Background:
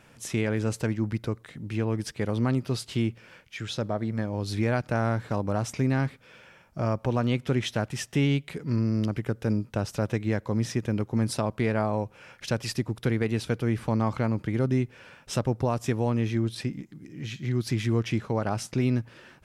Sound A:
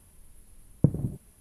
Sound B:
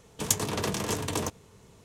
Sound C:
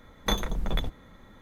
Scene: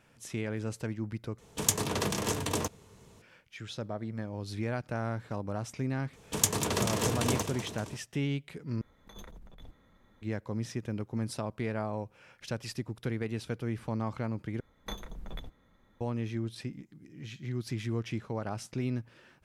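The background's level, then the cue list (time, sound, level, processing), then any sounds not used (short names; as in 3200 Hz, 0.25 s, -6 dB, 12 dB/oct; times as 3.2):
background -8 dB
1.38 replace with B -1 dB
6.13 add B -0.5 dB + warbling echo 0.193 s, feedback 62%, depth 84 cents, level -10.5 dB
8.81 replace with C -16.5 dB + negative-ratio compressor -32 dBFS
14.6 replace with C -13.5 dB
not used: A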